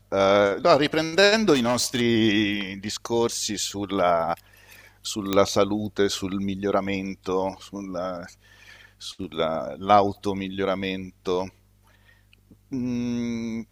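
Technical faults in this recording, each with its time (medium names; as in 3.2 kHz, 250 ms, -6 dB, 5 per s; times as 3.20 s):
1.53–2.02 s: clipped -19 dBFS
5.33 s: pop -8 dBFS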